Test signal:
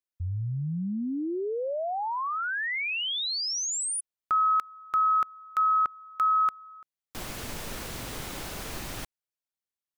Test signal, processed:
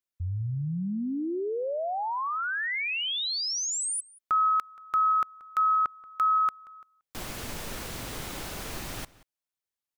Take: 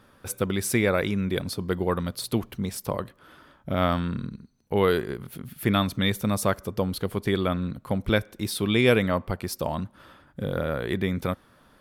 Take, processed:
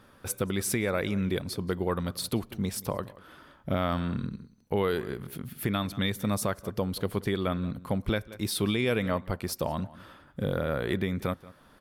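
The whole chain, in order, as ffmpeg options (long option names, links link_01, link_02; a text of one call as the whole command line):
ffmpeg -i in.wav -filter_complex "[0:a]asplit=2[link_01][link_02];[link_02]adelay=180.8,volume=-20dB,highshelf=frequency=4000:gain=-4.07[link_03];[link_01][link_03]amix=inputs=2:normalize=0,alimiter=limit=-17dB:level=0:latency=1:release=401" out.wav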